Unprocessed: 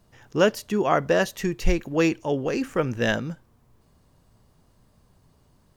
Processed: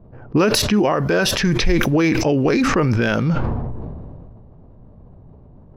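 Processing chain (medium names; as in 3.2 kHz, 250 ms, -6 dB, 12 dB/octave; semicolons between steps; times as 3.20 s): level-controlled noise filter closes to 690 Hz, open at -21.5 dBFS; compression, threshold -27 dBFS, peak gain reduction 13 dB; formant shift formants -2 st; peaking EQ 8.6 kHz -12 dB 0.34 oct; loudness maximiser +23 dB; decay stretcher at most 24 dB/s; trim -8 dB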